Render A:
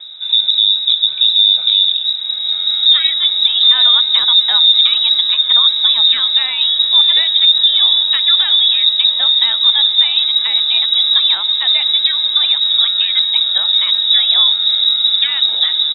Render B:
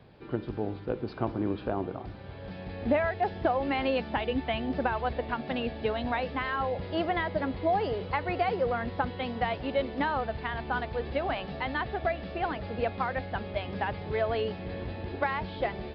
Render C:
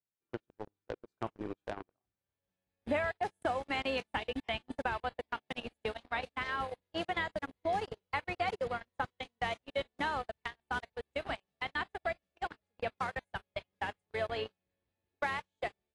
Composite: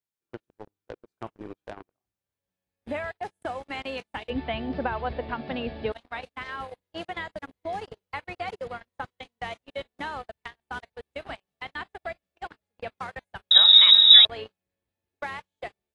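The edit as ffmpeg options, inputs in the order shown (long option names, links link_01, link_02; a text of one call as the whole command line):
ffmpeg -i take0.wav -i take1.wav -i take2.wav -filter_complex "[2:a]asplit=3[link_01][link_02][link_03];[link_01]atrim=end=4.302[link_04];[1:a]atrim=start=4.298:end=5.922[link_05];[link_02]atrim=start=5.918:end=13.512[link_06];[0:a]atrim=start=13.508:end=14.252[link_07];[link_03]atrim=start=14.248[link_08];[link_04][link_05]acrossfade=duration=0.004:curve1=hsin:curve2=hsin[link_09];[link_09][link_06]acrossfade=duration=0.004:curve1=hsin:curve2=hsin[link_10];[link_10][link_07]acrossfade=duration=0.004:curve1=hsin:curve2=hsin[link_11];[link_11][link_08]acrossfade=duration=0.004:curve1=hsin:curve2=hsin" out.wav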